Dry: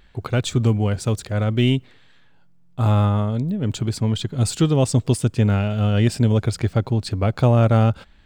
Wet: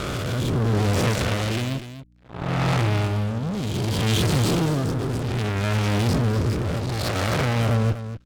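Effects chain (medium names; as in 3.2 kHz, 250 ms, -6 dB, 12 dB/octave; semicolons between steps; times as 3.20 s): reverse spectral sustain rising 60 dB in 1.45 s; Bessel low-pass 3.4 kHz, order 2; in parallel at -3 dB: compression 5:1, threshold -27 dBFS, peak gain reduction 14.5 dB; on the sum: fuzz box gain 28 dB, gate -32 dBFS; rotary cabinet horn 0.65 Hz; hum 60 Hz, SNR 24 dB; Chebyshev shaper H 3 -15 dB, 5 -34 dB, 7 -25 dB, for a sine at -4.5 dBFS; delay 244 ms -11.5 dB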